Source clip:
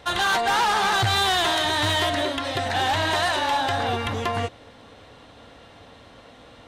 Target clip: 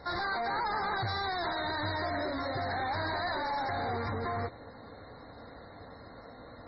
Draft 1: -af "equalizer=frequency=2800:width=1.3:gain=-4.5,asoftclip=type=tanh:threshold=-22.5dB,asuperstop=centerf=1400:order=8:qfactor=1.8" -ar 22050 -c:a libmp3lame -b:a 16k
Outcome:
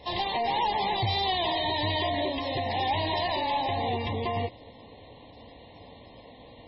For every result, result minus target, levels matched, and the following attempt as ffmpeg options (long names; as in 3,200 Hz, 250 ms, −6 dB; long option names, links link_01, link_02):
4,000 Hz band +5.0 dB; soft clipping: distortion −7 dB
-af "equalizer=frequency=2800:width=1.3:gain=-4.5,asoftclip=type=tanh:threshold=-22.5dB,asuperstop=centerf=2900:order=8:qfactor=1.8" -ar 22050 -c:a libmp3lame -b:a 16k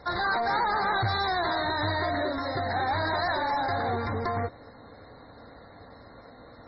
soft clipping: distortion −7 dB
-af "equalizer=frequency=2800:width=1.3:gain=-4.5,asoftclip=type=tanh:threshold=-30.5dB,asuperstop=centerf=2900:order=8:qfactor=1.8" -ar 22050 -c:a libmp3lame -b:a 16k